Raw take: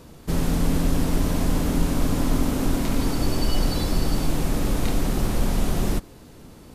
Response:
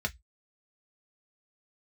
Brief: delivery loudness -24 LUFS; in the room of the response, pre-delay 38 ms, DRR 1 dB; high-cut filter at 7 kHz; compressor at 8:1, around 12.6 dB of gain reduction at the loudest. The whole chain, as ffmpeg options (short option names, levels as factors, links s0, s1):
-filter_complex "[0:a]lowpass=7000,acompressor=threshold=0.0355:ratio=8,asplit=2[s0][s1];[1:a]atrim=start_sample=2205,adelay=38[s2];[s1][s2]afir=irnorm=-1:irlink=0,volume=0.501[s3];[s0][s3]amix=inputs=2:normalize=0,volume=2.66"